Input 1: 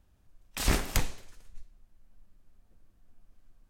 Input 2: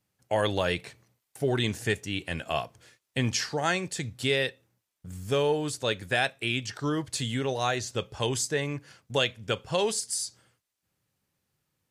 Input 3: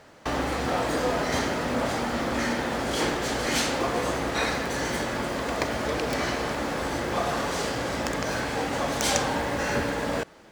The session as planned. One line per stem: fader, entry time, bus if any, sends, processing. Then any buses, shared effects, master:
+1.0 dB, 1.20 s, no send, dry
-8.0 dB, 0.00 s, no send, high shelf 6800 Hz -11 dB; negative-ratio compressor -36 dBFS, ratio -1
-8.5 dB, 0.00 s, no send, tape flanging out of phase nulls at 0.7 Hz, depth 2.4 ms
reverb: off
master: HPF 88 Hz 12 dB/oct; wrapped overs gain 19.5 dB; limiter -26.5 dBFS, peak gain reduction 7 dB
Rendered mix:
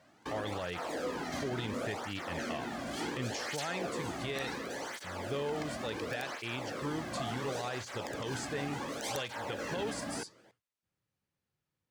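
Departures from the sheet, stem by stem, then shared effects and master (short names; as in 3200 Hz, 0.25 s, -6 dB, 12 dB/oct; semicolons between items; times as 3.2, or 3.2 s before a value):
stem 1: muted; stem 2: missing negative-ratio compressor -36 dBFS, ratio -1; master: missing HPF 88 Hz 12 dB/oct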